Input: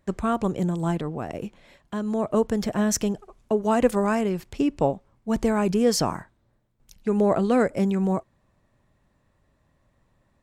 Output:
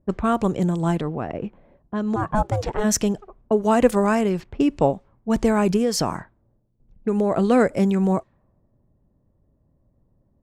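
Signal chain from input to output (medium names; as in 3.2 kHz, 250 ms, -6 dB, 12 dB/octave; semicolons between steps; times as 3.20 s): 2.15–2.83 s: ring modulator 590 Hz -> 210 Hz; level-controlled noise filter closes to 460 Hz, open at -21 dBFS; 5.76–7.38 s: compression, threshold -21 dBFS, peak gain reduction 6.5 dB; trim +3.5 dB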